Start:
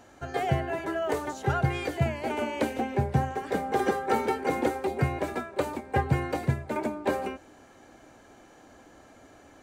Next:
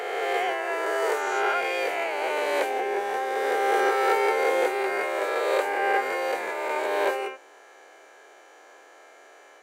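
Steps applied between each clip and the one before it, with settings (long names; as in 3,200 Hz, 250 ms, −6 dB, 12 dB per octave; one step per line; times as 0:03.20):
peak hold with a rise ahead of every peak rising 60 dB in 2.41 s
Chebyshev high-pass filter 400 Hz, order 4
parametric band 2,100 Hz +4.5 dB 1 octave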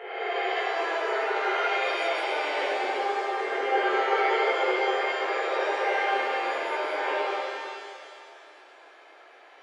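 transistor ladder low-pass 5,400 Hz, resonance 25%
gate on every frequency bin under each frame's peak −25 dB strong
reverb with rising layers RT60 2.2 s, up +7 semitones, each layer −8 dB, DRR −10 dB
level −6 dB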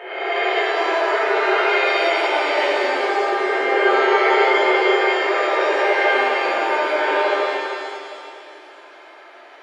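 convolution reverb RT60 1.9 s, pre-delay 3 ms, DRR −1.5 dB
level +5 dB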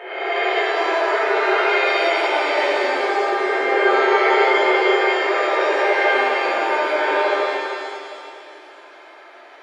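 notch filter 2,900 Hz, Q 22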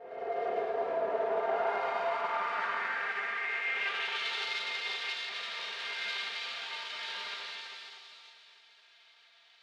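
lower of the sound and its delayed copy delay 4.3 ms
band-pass filter sweep 530 Hz → 3,800 Hz, 0:01.10–0:04.43
level −5.5 dB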